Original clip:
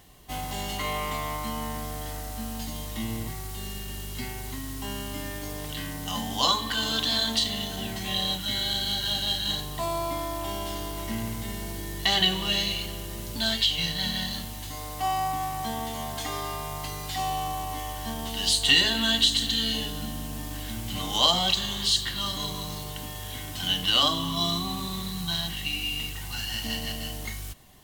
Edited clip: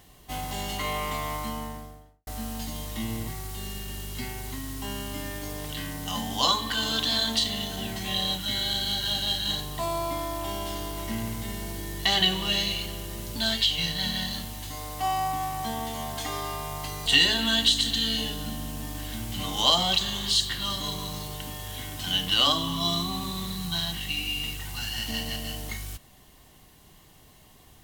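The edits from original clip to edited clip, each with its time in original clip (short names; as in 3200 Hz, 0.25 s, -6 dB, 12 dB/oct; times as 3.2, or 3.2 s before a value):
1.36–2.27 studio fade out
17.06–18.62 cut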